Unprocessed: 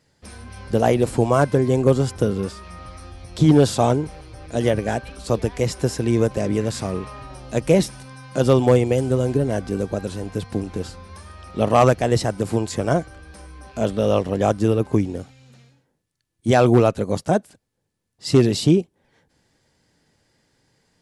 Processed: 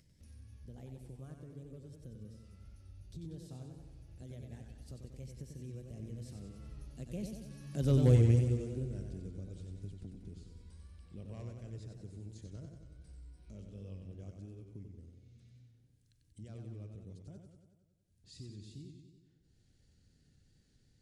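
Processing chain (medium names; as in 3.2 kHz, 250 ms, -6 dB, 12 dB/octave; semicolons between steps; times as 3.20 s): Doppler pass-by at 8.10 s, 25 m/s, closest 5 m; amplifier tone stack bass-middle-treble 10-0-1; upward compressor, threshold -48 dBFS; modulated delay 93 ms, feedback 62%, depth 94 cents, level -5.5 dB; trim +8 dB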